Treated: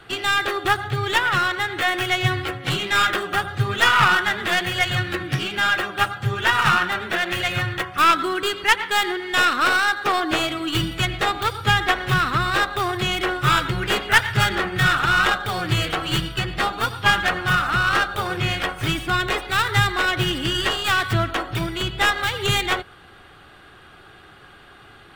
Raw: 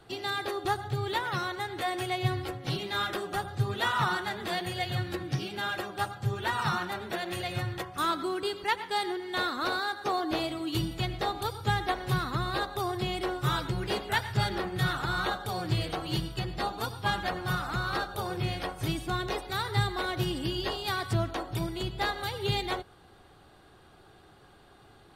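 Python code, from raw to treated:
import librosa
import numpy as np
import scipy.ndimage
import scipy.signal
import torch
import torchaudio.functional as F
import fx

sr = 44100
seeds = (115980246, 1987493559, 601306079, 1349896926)

y = fx.tracing_dist(x, sr, depth_ms=0.19)
y = fx.band_shelf(y, sr, hz=2000.0, db=8.5, octaves=1.7)
y = y * librosa.db_to_amplitude(6.5)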